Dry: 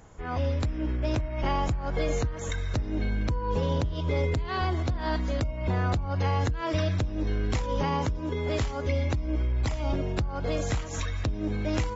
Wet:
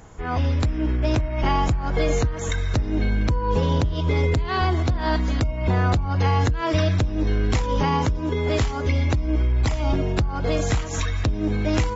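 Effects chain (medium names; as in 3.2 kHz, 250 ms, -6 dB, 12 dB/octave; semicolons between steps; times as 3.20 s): band-stop 560 Hz, Q 12; trim +6.5 dB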